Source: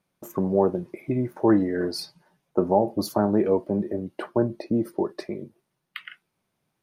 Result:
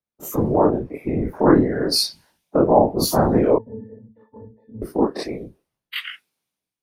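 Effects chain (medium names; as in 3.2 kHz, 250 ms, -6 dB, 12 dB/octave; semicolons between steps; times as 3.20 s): every event in the spectrogram widened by 60 ms; in parallel at +2 dB: compression, threshold -29 dBFS, peak gain reduction 16.5 dB; on the sum: whisper effect; 3.58–4.82 s: pitch-class resonator A, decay 0.19 s; three bands expanded up and down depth 70%; trim -1 dB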